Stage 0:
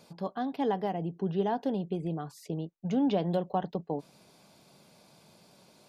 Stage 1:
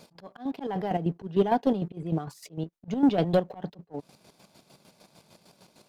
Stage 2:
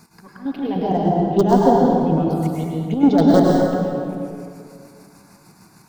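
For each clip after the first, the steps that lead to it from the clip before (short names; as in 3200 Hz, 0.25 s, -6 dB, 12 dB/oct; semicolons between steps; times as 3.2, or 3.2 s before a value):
sample leveller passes 1; auto swell 0.183 s; chopper 6.6 Hz, depth 60%, duty 40%; gain +5 dB
in parallel at -9 dB: wrapped overs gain 13.5 dB; on the sum: envelope phaser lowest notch 530 Hz, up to 2500 Hz, full sweep at -22 dBFS; plate-style reverb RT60 2.3 s, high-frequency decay 0.6×, pre-delay 90 ms, DRR -3.5 dB; gain +4.5 dB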